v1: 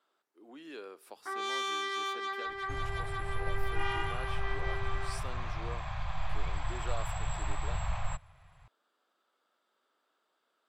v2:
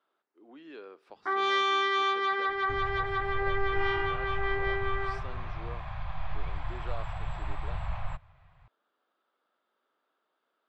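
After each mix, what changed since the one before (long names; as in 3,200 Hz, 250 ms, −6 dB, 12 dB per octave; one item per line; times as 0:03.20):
first sound +9.5 dB
master: add high-frequency loss of the air 200 metres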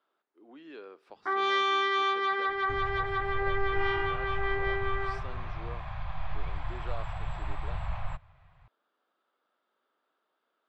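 first sound: add high-shelf EQ 9,400 Hz −8.5 dB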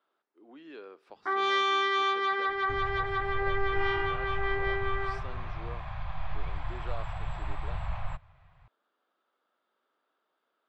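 first sound: add high-shelf EQ 9,400 Hz +8.5 dB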